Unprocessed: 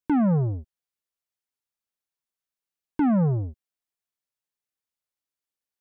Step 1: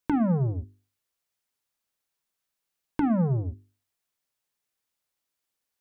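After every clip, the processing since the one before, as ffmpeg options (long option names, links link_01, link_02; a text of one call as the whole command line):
ffmpeg -i in.wav -af "acompressor=threshold=-34dB:ratio=2.5,bandreject=frequency=50:width_type=h:width=6,bandreject=frequency=100:width_type=h:width=6,bandreject=frequency=150:width_type=h:width=6,bandreject=frequency=200:width_type=h:width=6,bandreject=frequency=250:width_type=h:width=6,bandreject=frequency=300:width_type=h:width=6,bandreject=frequency=350:width_type=h:width=6,bandreject=frequency=400:width_type=h:width=6,volume=7dB" out.wav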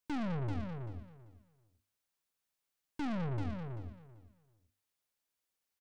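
ffmpeg -i in.wav -af "aeval=exprs='(tanh(44.7*val(0)+0.55)-tanh(0.55))/44.7':channel_layout=same,aecho=1:1:388|776|1164:0.501|0.0902|0.0162,volume=-2dB" out.wav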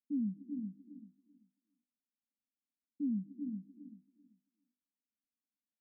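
ffmpeg -i in.wav -af "asuperpass=centerf=240:order=12:qfactor=2.2,volume=3.5dB" out.wav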